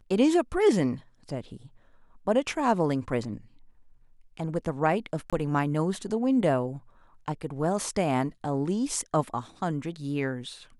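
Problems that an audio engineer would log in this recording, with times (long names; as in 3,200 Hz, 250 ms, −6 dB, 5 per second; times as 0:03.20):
0:05.30–0:05.33: drop-out 26 ms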